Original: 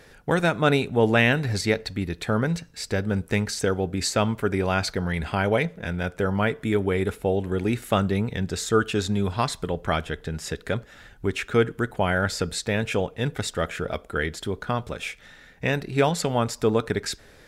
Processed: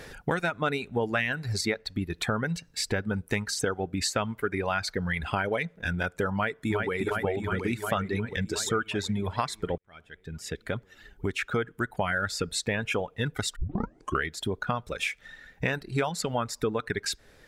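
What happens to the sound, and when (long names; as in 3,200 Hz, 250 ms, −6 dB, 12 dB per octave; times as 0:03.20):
0:06.34–0:07.00: delay throw 360 ms, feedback 75%, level −3.5 dB
0:09.78–0:12.20: fade in
0:13.56: tape start 0.68 s
whole clip: reverb reduction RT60 1.7 s; dynamic equaliser 1,500 Hz, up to +6 dB, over −38 dBFS, Q 0.83; downward compressor 4 to 1, threshold −34 dBFS; level +6.5 dB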